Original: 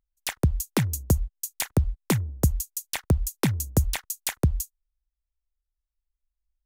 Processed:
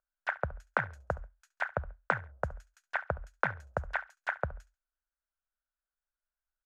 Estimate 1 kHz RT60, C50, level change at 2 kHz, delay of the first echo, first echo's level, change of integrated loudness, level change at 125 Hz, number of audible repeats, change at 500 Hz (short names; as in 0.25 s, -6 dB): none, none, +4.0 dB, 69 ms, -19.5 dB, -9.0 dB, -17.5 dB, 2, -4.0 dB